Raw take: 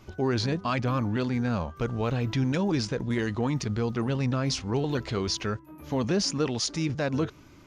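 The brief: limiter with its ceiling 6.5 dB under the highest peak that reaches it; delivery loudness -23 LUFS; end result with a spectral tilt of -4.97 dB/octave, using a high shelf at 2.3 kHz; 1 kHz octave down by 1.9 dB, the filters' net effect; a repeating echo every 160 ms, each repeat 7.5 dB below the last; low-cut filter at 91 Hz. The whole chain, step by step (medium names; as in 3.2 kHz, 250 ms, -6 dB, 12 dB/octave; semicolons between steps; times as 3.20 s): high-pass 91 Hz; peaking EQ 1 kHz -3.5 dB; treble shelf 2.3 kHz +5 dB; peak limiter -19 dBFS; feedback delay 160 ms, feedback 42%, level -7.5 dB; trim +5.5 dB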